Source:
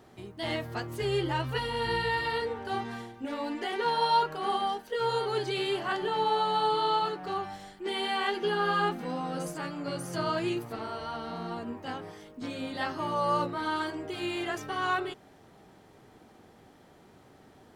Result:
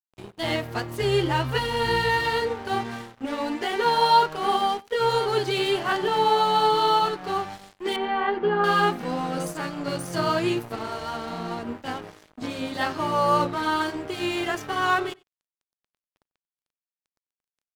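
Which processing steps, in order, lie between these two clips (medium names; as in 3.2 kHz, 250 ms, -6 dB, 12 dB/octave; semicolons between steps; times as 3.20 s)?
crossover distortion -46 dBFS; 7.96–8.64 s: low-pass 1.6 kHz 12 dB/octave; echo from a far wall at 16 m, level -25 dB; trim +7.5 dB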